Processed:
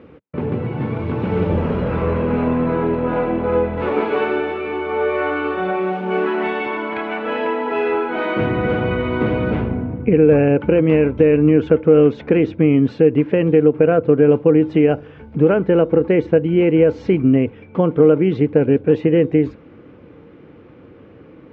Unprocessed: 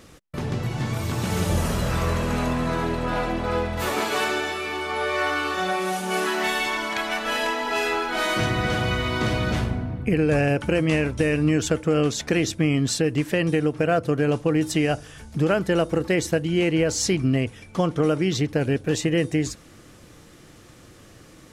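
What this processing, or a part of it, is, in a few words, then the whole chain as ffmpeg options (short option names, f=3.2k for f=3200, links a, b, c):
bass cabinet: -af "highpass=81,equalizer=f=120:t=q:w=4:g=-4,equalizer=f=270:t=q:w=4:g=4,equalizer=f=460:t=q:w=4:g=7,equalizer=f=680:t=q:w=4:g=-5,equalizer=f=1.2k:t=q:w=4:g=-5,equalizer=f=1.8k:t=q:w=4:g=-9,lowpass=f=2.2k:w=0.5412,lowpass=f=2.2k:w=1.3066,volume=5.5dB"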